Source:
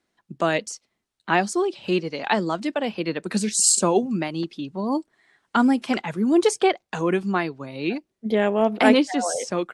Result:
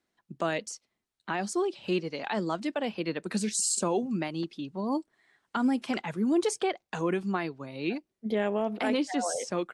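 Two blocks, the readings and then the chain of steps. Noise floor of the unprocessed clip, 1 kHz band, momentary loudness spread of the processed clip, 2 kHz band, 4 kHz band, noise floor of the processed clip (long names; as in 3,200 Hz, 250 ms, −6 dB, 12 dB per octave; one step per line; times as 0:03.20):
−79 dBFS, −8.5 dB, 8 LU, −9.0 dB, −8.0 dB, −84 dBFS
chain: brickwall limiter −13 dBFS, peak gain reduction 10 dB
level −5.5 dB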